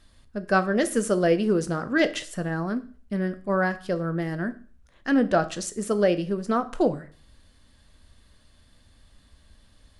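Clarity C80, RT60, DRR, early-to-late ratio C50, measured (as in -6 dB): 21.5 dB, 0.45 s, 10.5 dB, 17.0 dB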